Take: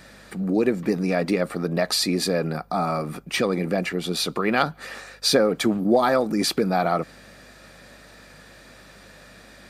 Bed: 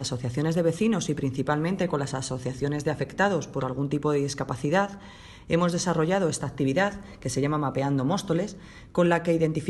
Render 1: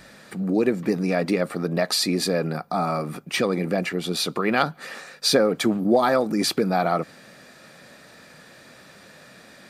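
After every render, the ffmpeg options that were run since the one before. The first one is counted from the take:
-af "bandreject=f=50:t=h:w=4,bandreject=f=100:t=h:w=4"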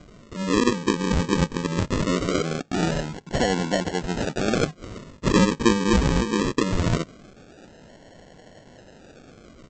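-af "aphaser=in_gain=1:out_gain=1:delay=4.5:decay=0.26:speed=0.7:type=triangular,aresample=16000,acrusher=samples=18:mix=1:aa=0.000001:lfo=1:lforange=10.8:lforate=0.21,aresample=44100"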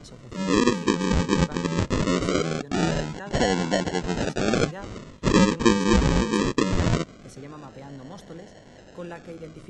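-filter_complex "[1:a]volume=-16dB[a];[0:a][a]amix=inputs=2:normalize=0"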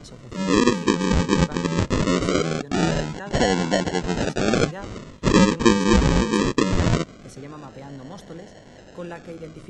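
-af "volume=2.5dB"

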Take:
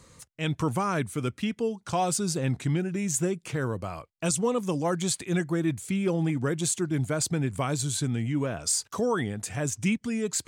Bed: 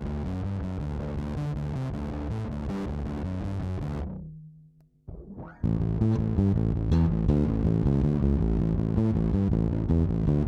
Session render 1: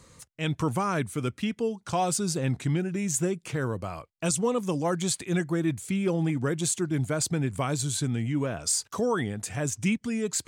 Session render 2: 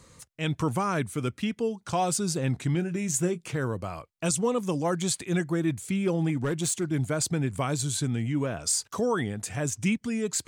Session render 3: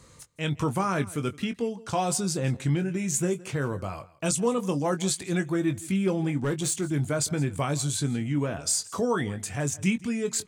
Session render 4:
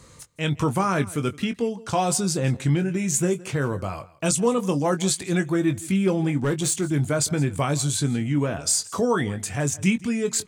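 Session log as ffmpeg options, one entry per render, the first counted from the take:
-af anull
-filter_complex "[0:a]asettb=1/sr,asplit=3[a][b][c];[a]atrim=end=2.724[d];[b]atrim=start=2.72:end=3.44,asetpts=PTS-STARTPTS,afade=t=in:d=0.004:c=qsin,afade=t=out:st=0.716:d=0.004:c=qsin,asplit=2[e][f];[f]adelay=23,volume=-12.5dB[g];[e][g]amix=inputs=2:normalize=0,atrim=end_sample=31752[h];[c]atrim=start=3.436[i];[d][h]acrossfade=d=0.004:c1=hsin:c2=qsin[j];[j][i]acrossfade=d=0.004:c1=qsin:c2=hsin,asettb=1/sr,asplit=3[k][l][m];[k]atrim=end=6.424[n];[l]atrim=start=6.42:end=6.89,asetpts=PTS-STARTPTS,afade=t=in:d=0.004:c=qsin,afade=t=out:st=0.466:d=0.004:c=qsin,volume=22dB,asoftclip=hard,volume=-22dB[o];[m]atrim=start=6.886[p];[n][o]acrossfade=d=0.004:c1=hsin:c2=qsin[q];[q][p]acrossfade=d=0.004:c1=qsin:c2=hsin"
-filter_complex "[0:a]asplit=2[a][b];[b]adelay=21,volume=-9dB[c];[a][c]amix=inputs=2:normalize=0,aecho=1:1:166:0.0944"
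-af "volume=4dB"

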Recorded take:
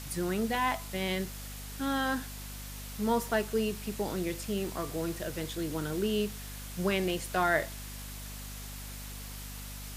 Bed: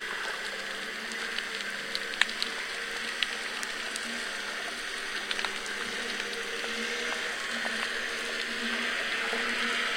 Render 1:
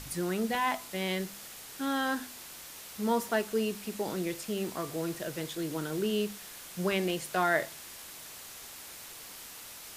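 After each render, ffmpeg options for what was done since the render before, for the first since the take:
-af "bandreject=f=50:t=h:w=4,bandreject=f=100:t=h:w=4,bandreject=f=150:t=h:w=4,bandreject=f=200:t=h:w=4,bandreject=f=250:t=h:w=4"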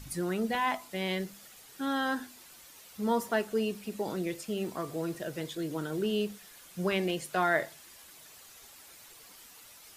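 -af "afftdn=nr=9:nf=-47"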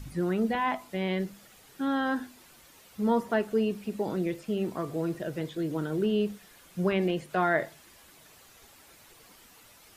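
-filter_complex "[0:a]acrossover=split=3300[a][b];[b]acompressor=threshold=-54dB:ratio=4:attack=1:release=60[c];[a][c]amix=inputs=2:normalize=0,lowshelf=f=500:g=5.5"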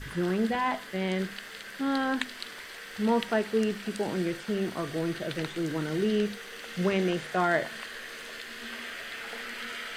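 -filter_complex "[1:a]volume=-8.5dB[a];[0:a][a]amix=inputs=2:normalize=0"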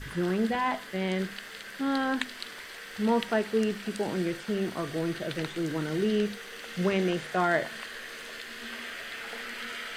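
-af anull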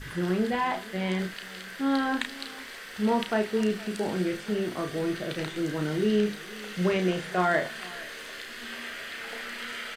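-filter_complex "[0:a]asplit=2[a][b];[b]adelay=33,volume=-6dB[c];[a][c]amix=inputs=2:normalize=0,aecho=1:1:465:0.0944"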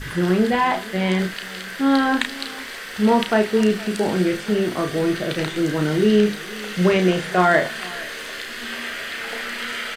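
-af "volume=8.5dB"

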